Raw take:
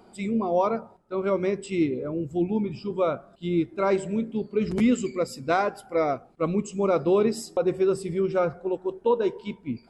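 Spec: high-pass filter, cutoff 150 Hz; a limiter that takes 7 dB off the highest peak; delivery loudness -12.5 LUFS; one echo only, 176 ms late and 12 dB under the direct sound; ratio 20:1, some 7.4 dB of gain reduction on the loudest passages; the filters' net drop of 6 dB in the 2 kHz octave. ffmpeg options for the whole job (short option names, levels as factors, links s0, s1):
-af "highpass=150,equalizer=f=2000:t=o:g=-8.5,acompressor=threshold=0.0562:ratio=20,alimiter=limit=0.0668:level=0:latency=1,aecho=1:1:176:0.251,volume=10.6"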